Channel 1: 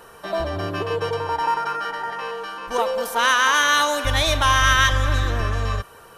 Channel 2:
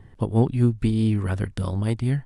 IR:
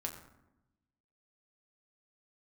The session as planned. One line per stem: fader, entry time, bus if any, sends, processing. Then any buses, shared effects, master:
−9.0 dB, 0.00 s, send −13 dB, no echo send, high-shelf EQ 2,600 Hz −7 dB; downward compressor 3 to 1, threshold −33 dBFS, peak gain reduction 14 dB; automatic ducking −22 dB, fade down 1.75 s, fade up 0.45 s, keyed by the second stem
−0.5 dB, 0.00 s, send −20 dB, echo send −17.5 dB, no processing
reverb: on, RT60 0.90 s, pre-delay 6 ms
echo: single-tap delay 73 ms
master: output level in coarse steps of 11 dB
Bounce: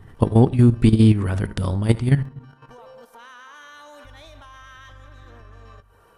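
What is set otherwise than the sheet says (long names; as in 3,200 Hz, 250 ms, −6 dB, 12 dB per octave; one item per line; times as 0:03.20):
stem 2 −0.5 dB → +8.5 dB
reverb return +6.0 dB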